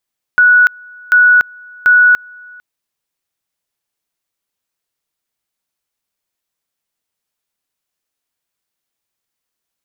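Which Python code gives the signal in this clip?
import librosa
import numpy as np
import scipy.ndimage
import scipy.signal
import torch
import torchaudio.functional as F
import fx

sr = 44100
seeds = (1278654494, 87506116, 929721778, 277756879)

y = fx.two_level_tone(sr, hz=1470.0, level_db=-4.5, drop_db=28.5, high_s=0.29, low_s=0.45, rounds=3)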